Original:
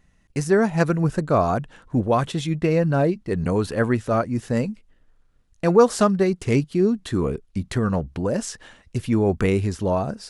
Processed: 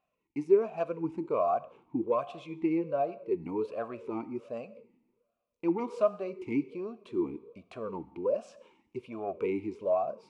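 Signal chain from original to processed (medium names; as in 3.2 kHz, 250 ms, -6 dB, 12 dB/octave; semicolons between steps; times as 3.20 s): saturation -8.5 dBFS, distortion -20 dB; two-slope reverb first 0.94 s, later 2.5 s, from -23 dB, DRR 14 dB; talking filter a-u 1.3 Hz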